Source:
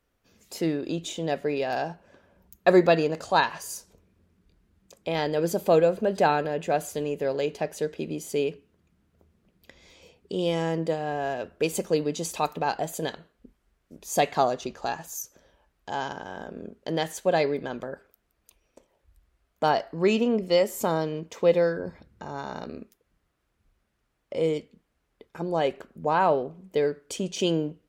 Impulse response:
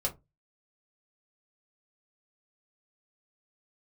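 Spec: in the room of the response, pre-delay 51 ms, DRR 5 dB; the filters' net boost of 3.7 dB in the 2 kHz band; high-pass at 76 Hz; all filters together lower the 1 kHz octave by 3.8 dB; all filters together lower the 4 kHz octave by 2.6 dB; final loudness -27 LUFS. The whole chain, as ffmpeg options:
-filter_complex "[0:a]highpass=76,equalizer=f=1000:t=o:g=-7,equalizer=f=2000:t=o:g=9,equalizer=f=4000:t=o:g=-7,asplit=2[s0][s1];[1:a]atrim=start_sample=2205,adelay=51[s2];[s1][s2]afir=irnorm=-1:irlink=0,volume=0.335[s3];[s0][s3]amix=inputs=2:normalize=0,volume=0.841"

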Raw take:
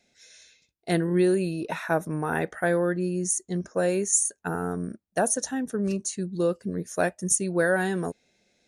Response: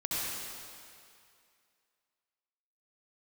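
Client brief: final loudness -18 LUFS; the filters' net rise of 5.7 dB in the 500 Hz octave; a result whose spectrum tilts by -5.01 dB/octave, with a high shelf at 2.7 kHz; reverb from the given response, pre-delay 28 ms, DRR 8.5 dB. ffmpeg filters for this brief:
-filter_complex "[0:a]equalizer=f=500:t=o:g=7.5,highshelf=f=2700:g=-8.5,asplit=2[s0][s1];[1:a]atrim=start_sample=2205,adelay=28[s2];[s1][s2]afir=irnorm=-1:irlink=0,volume=0.168[s3];[s0][s3]amix=inputs=2:normalize=0,volume=1.88"

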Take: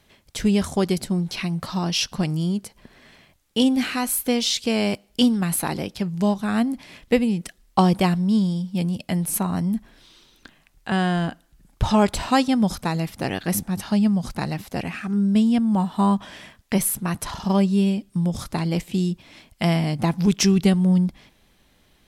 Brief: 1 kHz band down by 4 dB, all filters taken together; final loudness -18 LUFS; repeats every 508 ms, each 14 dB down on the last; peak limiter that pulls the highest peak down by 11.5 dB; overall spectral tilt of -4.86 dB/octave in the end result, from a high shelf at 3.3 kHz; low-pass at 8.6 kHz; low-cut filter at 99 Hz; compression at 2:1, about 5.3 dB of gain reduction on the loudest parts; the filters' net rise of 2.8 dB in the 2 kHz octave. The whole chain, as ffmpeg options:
-af "highpass=99,lowpass=8600,equalizer=f=1000:t=o:g=-6.5,equalizer=f=2000:t=o:g=3.5,highshelf=f=3300:g=5,acompressor=threshold=0.0708:ratio=2,alimiter=limit=0.119:level=0:latency=1,aecho=1:1:508|1016:0.2|0.0399,volume=2.99"

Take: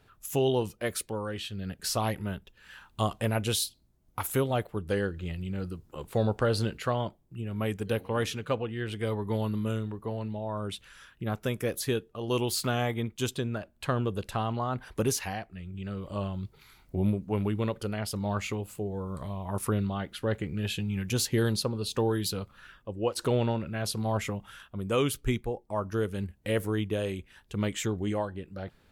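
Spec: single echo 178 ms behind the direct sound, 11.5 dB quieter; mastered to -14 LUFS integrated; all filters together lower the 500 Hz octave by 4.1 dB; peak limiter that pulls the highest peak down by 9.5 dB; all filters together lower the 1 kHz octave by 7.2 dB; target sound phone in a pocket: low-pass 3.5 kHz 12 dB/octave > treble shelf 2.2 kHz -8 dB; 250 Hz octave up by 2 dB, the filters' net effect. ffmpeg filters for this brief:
-af "equalizer=f=250:t=o:g=4,equalizer=f=500:t=o:g=-4.5,equalizer=f=1000:t=o:g=-6.5,alimiter=level_in=1.06:limit=0.0631:level=0:latency=1,volume=0.944,lowpass=3500,highshelf=f=2200:g=-8,aecho=1:1:178:0.266,volume=12.6"

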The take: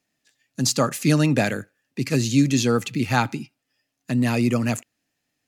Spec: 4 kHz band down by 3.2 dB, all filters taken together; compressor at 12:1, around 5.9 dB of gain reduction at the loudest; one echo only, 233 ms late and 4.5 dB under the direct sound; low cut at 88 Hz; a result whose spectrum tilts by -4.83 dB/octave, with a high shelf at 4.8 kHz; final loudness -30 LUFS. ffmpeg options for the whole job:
-af "highpass=88,equalizer=f=4000:t=o:g=-8,highshelf=f=4800:g=7,acompressor=threshold=0.112:ratio=12,aecho=1:1:233:0.596,volume=0.562"

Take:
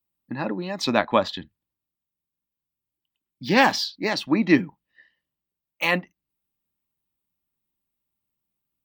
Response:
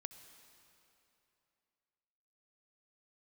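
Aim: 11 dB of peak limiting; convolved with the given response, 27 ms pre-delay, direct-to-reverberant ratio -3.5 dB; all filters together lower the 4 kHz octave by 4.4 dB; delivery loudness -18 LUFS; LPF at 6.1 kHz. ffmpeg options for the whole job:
-filter_complex "[0:a]lowpass=6100,equalizer=f=4000:t=o:g=-4.5,alimiter=limit=0.2:level=0:latency=1,asplit=2[s0][s1];[1:a]atrim=start_sample=2205,adelay=27[s2];[s1][s2]afir=irnorm=-1:irlink=0,volume=2.51[s3];[s0][s3]amix=inputs=2:normalize=0,volume=1.78"

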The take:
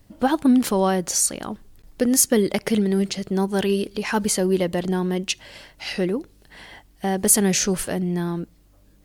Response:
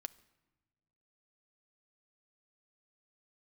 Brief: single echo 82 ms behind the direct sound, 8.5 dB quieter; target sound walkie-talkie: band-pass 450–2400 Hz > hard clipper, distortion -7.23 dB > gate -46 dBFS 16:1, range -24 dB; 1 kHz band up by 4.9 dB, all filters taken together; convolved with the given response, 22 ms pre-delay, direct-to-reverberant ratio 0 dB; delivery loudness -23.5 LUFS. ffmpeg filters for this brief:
-filter_complex "[0:a]equalizer=f=1000:t=o:g=7,aecho=1:1:82:0.376,asplit=2[s0][s1];[1:a]atrim=start_sample=2205,adelay=22[s2];[s1][s2]afir=irnorm=-1:irlink=0,volume=1.5[s3];[s0][s3]amix=inputs=2:normalize=0,highpass=450,lowpass=2400,asoftclip=type=hard:threshold=0.0944,agate=range=0.0631:threshold=0.00501:ratio=16,volume=1.41"

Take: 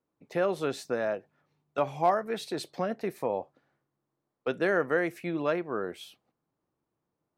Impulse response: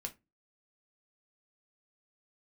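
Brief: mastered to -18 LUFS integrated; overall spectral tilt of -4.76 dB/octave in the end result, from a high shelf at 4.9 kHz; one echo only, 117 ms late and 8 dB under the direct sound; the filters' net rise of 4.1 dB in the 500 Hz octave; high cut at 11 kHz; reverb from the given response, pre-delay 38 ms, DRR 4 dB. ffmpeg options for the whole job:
-filter_complex "[0:a]lowpass=11000,equalizer=f=500:t=o:g=5,highshelf=f=4900:g=-6.5,aecho=1:1:117:0.398,asplit=2[s0][s1];[1:a]atrim=start_sample=2205,adelay=38[s2];[s1][s2]afir=irnorm=-1:irlink=0,volume=0.794[s3];[s0][s3]amix=inputs=2:normalize=0,volume=2.37"

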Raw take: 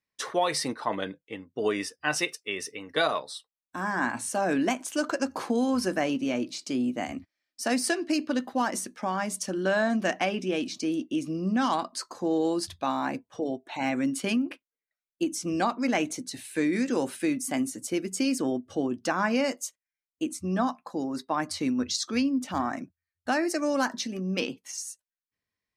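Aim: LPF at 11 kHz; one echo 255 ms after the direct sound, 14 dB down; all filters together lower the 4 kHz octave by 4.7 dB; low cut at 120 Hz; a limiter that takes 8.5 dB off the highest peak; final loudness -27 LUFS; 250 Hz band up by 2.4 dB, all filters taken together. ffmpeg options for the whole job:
-af "highpass=120,lowpass=11000,equalizer=f=250:t=o:g=3,equalizer=f=4000:t=o:g=-6.5,alimiter=limit=0.0944:level=0:latency=1,aecho=1:1:255:0.2,volume=1.5"

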